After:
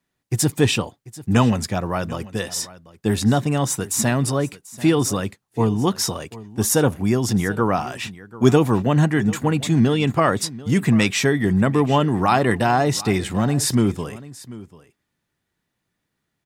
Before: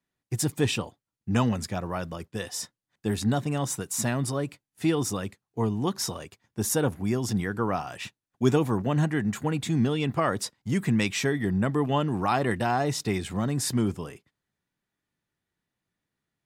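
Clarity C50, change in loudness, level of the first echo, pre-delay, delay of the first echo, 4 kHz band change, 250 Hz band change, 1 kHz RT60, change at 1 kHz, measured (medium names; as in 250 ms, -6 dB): no reverb, +7.5 dB, -18.5 dB, no reverb, 740 ms, +7.5 dB, +7.5 dB, no reverb, +7.5 dB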